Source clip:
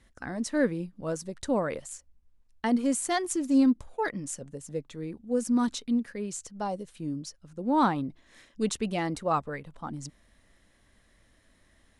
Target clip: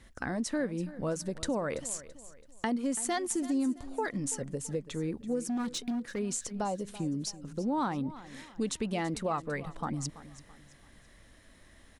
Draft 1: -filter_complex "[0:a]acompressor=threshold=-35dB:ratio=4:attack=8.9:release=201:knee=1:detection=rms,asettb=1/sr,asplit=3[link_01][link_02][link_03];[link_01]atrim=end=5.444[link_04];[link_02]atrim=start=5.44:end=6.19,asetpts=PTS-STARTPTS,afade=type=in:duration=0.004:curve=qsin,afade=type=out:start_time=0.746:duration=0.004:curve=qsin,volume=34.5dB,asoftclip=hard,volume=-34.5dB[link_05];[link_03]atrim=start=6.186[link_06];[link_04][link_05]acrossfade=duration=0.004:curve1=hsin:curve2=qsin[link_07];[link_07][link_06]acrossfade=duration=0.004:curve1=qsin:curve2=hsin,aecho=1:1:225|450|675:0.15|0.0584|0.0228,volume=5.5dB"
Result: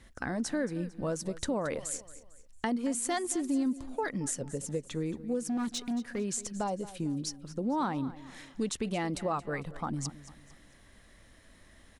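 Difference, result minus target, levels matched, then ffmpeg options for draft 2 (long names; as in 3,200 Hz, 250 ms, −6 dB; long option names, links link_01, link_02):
echo 108 ms early
-filter_complex "[0:a]acompressor=threshold=-35dB:ratio=4:attack=8.9:release=201:knee=1:detection=rms,asettb=1/sr,asplit=3[link_01][link_02][link_03];[link_01]atrim=end=5.444[link_04];[link_02]atrim=start=5.44:end=6.19,asetpts=PTS-STARTPTS,afade=type=in:duration=0.004:curve=qsin,afade=type=out:start_time=0.746:duration=0.004:curve=qsin,volume=34.5dB,asoftclip=hard,volume=-34.5dB[link_05];[link_03]atrim=start=6.186[link_06];[link_04][link_05]acrossfade=duration=0.004:curve1=hsin:curve2=qsin[link_07];[link_07][link_06]acrossfade=duration=0.004:curve1=qsin:curve2=hsin,aecho=1:1:333|666|999:0.15|0.0584|0.0228,volume=5.5dB"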